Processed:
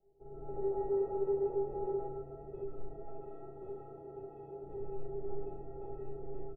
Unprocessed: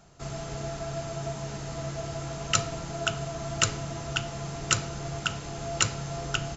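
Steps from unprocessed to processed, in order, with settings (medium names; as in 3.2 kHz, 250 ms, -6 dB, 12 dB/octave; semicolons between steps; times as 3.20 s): comb filter that takes the minimum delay 0.31 ms; 2.96–4.64 s: high-pass 270 Hz 6 dB/octave; early reflections 37 ms -5 dB, 64 ms -3.5 dB; on a send at -4 dB: reverberation RT60 1.3 s, pre-delay 110 ms; on the sum: level rider gain up to 14 dB; wavefolder -18 dBFS; four-pole ladder low-pass 630 Hz, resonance 50%; inharmonic resonator 390 Hz, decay 0.41 s, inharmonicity 0.03; trim +13.5 dB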